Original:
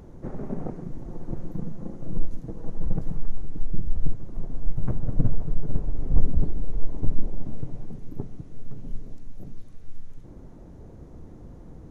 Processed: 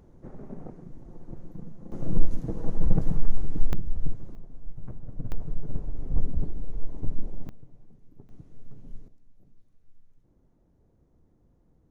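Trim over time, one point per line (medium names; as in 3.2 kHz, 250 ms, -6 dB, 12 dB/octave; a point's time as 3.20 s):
-9 dB
from 1.92 s +4 dB
from 3.73 s -3.5 dB
from 4.35 s -13 dB
from 5.32 s -5.5 dB
from 7.49 s -18 dB
from 8.29 s -9 dB
from 9.08 s -20 dB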